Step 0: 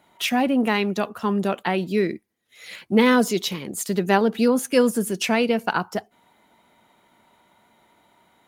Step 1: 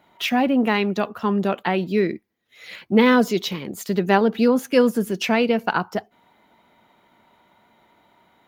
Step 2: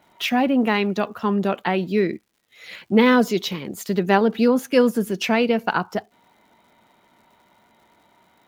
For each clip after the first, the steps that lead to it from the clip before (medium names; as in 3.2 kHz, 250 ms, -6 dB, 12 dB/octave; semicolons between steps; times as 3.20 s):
peaking EQ 9.2 kHz -12.5 dB 0.94 oct; trim +1.5 dB
crackle 220 per s -51 dBFS